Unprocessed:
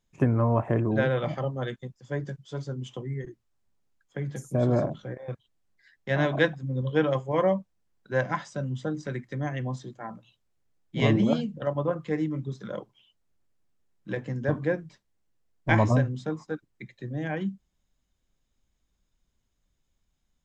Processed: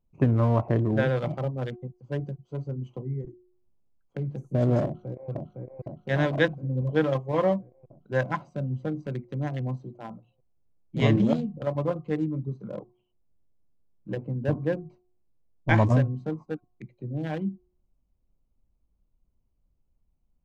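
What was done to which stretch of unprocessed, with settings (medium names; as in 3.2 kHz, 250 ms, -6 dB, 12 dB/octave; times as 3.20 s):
4.84–5.30 s: echo throw 510 ms, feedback 65%, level -3 dB
12.64–14.85 s: treble shelf 2.7 kHz -10 dB
whole clip: local Wiener filter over 25 samples; bass shelf 92 Hz +5.5 dB; de-hum 361.6 Hz, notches 3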